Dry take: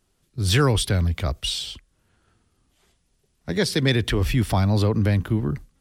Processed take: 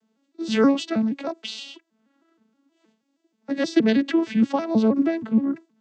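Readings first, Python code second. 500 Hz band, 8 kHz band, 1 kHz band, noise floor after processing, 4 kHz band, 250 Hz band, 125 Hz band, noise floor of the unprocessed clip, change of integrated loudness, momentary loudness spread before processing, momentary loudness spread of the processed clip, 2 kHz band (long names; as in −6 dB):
+1.0 dB, below −10 dB, −0.5 dB, −74 dBFS, −7.5 dB, +6.0 dB, −17.0 dB, −69 dBFS, 0.0 dB, 10 LU, 14 LU, −4.0 dB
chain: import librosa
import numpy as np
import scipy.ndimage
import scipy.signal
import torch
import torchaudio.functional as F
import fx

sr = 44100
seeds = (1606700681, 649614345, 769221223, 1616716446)

y = fx.vocoder_arp(x, sr, chord='major triad', root=57, every_ms=158)
y = y * librosa.db_to_amplitude(1.5)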